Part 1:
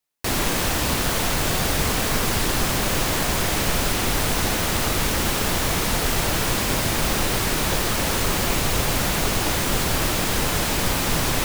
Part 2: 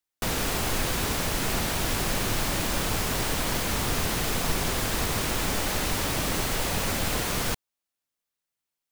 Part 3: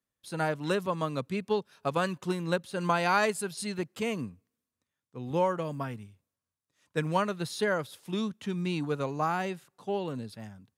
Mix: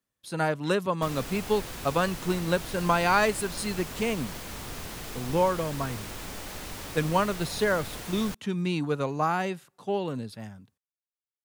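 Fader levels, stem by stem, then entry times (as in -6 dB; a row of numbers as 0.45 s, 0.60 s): mute, -11.5 dB, +3.0 dB; mute, 0.80 s, 0.00 s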